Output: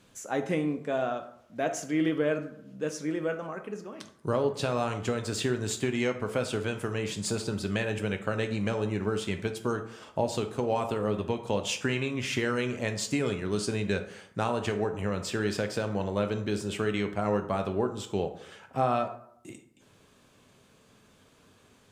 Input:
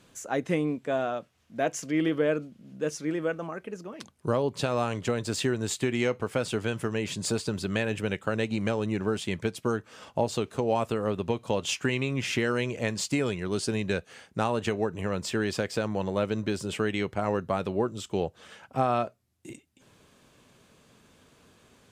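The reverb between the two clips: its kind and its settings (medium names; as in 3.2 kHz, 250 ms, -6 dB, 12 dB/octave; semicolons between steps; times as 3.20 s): plate-style reverb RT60 0.7 s, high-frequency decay 0.55×, DRR 6.5 dB; trim -2 dB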